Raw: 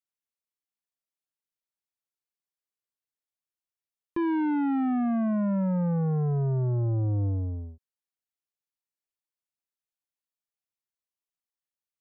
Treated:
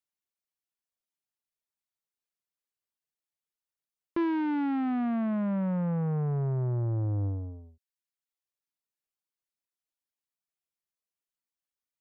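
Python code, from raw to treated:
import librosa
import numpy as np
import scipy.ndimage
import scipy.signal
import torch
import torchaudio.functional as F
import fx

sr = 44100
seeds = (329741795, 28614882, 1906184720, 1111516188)

y = fx.dereverb_blind(x, sr, rt60_s=0.75)
y = fx.doppler_dist(y, sr, depth_ms=0.31)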